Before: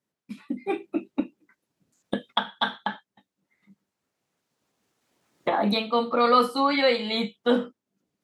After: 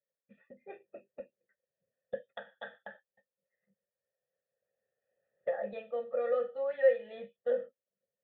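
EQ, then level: dynamic EQ 380 Hz, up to -4 dB, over -34 dBFS, Q 0.75; vocal tract filter e; fixed phaser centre 1500 Hz, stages 8; +3.0 dB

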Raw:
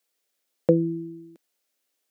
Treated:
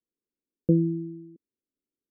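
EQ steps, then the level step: inverse Chebyshev low-pass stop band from 970 Hz, stop band 50 dB; low shelf 98 Hz +10 dB; 0.0 dB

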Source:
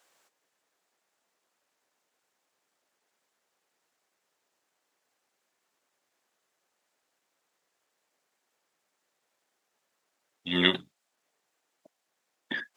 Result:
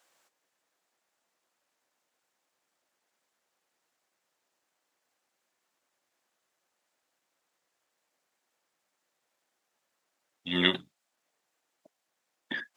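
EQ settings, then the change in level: notch 420 Hz, Q 12; -1.5 dB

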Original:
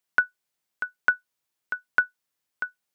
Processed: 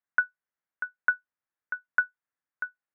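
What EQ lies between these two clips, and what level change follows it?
ladder low-pass 2000 Hz, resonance 45%; notch 390 Hz, Q 12; 0.0 dB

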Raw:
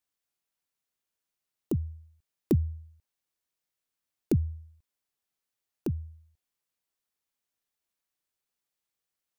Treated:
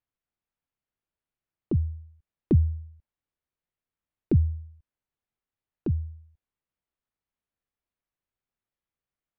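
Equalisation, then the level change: air absorption 380 m; low shelf 140 Hz +9.5 dB; 0.0 dB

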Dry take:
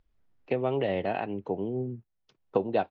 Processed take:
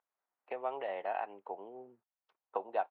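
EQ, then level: ladder band-pass 1100 Hz, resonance 30%; +7.0 dB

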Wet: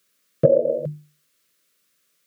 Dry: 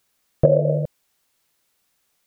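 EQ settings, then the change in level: HPF 130 Hz 24 dB/oct; Butterworth band-stop 830 Hz, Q 1.8; notches 50/100/150/200/250/300/350 Hz; +1.5 dB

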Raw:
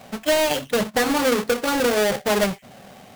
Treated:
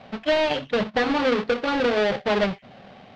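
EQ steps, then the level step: LPF 4200 Hz 24 dB/oct; -1.5 dB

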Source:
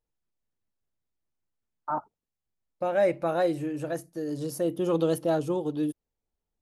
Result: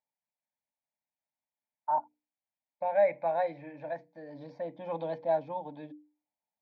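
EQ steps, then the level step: speaker cabinet 220–3200 Hz, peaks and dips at 270 Hz +5 dB, 610 Hz +6 dB, 900 Hz +9 dB, 2400 Hz +9 dB; notches 60/120/180/240/300/360/420/480 Hz; fixed phaser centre 1900 Hz, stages 8; -5.0 dB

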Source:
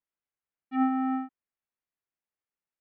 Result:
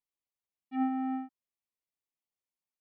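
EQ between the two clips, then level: Butterworth band-stop 1500 Hz, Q 2.5; -4.5 dB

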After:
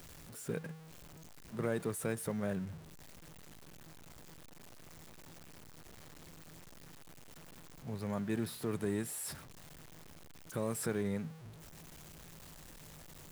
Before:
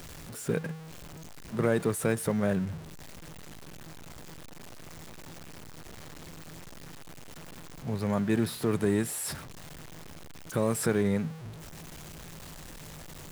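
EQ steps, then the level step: high shelf 9400 Hz +4.5 dB; -9.0 dB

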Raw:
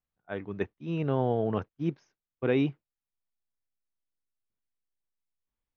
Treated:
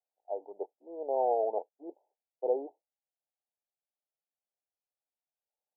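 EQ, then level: inverse Chebyshev high-pass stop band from 160 Hz, stop band 60 dB; steep low-pass 870 Hz 96 dB/oct; +5.5 dB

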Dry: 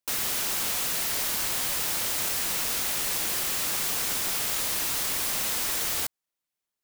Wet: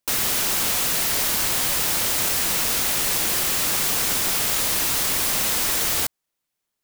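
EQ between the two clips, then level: low shelf 420 Hz +3 dB; +6.0 dB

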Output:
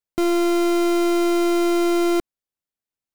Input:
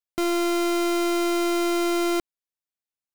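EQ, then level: tilt shelf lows +3.5 dB, about 650 Hz; +3.0 dB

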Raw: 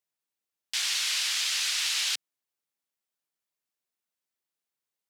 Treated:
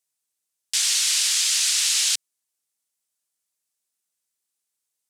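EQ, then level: bell 8600 Hz +14 dB 1.7 oct; -1.0 dB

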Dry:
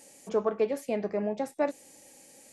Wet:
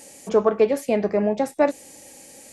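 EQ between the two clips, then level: bell 66 Hz +11.5 dB 0.56 oct; +9.0 dB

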